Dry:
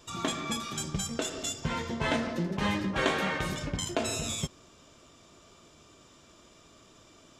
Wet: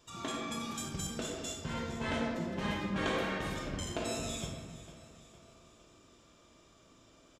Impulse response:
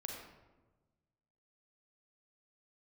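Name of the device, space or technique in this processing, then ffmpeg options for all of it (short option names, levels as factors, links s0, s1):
bathroom: -filter_complex "[0:a]asettb=1/sr,asplit=3[s0][s1][s2];[s0]atrim=end=0.634[s3];[s1]atrim=start=0.63:end=1.22,asetpts=PTS-STARTPTS,afade=t=in:d=0.004:c=qsin,afade=t=out:st=0.586:d=0.004:c=qsin,highshelf=f=10000:g=8[s4];[s2]atrim=start=1.216[s5];[s3][s4]acrossfade=d=0.004:c1=hsin:c2=qsin[s6];[s6][s5]acrossfade=d=0.004:c1=qsin:c2=hsin[s7];[1:a]atrim=start_sample=2205[s8];[s7][s8]afir=irnorm=-1:irlink=0,aecho=1:1:457|914|1371|1828:0.158|0.0777|0.0381|0.0186,volume=0.631"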